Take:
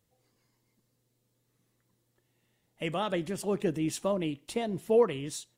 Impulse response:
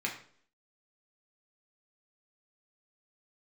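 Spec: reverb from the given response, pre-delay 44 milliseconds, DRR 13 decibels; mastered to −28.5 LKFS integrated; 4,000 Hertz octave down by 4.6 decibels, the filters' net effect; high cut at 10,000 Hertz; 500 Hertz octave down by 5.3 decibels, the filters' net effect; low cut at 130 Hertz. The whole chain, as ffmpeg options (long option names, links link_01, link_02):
-filter_complex "[0:a]highpass=130,lowpass=10000,equalizer=frequency=500:width_type=o:gain=-6,equalizer=frequency=4000:width_type=o:gain=-6.5,asplit=2[link_01][link_02];[1:a]atrim=start_sample=2205,adelay=44[link_03];[link_02][link_03]afir=irnorm=-1:irlink=0,volume=-18.5dB[link_04];[link_01][link_04]amix=inputs=2:normalize=0,volume=6dB"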